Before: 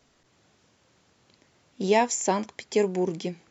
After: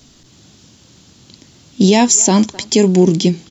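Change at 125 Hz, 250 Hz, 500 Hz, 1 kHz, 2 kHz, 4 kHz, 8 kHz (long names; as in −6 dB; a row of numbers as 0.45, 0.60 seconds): +19.5 dB, +18.0 dB, +9.5 dB, +6.5 dB, +7.5 dB, +17.5 dB, can't be measured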